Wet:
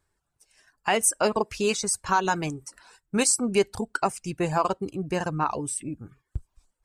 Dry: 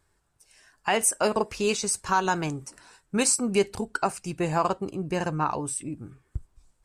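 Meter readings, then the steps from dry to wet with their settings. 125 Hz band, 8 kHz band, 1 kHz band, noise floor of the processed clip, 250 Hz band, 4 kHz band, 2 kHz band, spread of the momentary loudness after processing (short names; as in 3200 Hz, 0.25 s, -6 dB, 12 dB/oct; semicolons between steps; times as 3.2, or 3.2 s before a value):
0.0 dB, +0.5 dB, +0.5 dB, -79 dBFS, +0.5 dB, +0.5 dB, +0.5 dB, 18 LU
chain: reverb removal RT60 0.54 s; gate -57 dBFS, range -6 dB; gain +1 dB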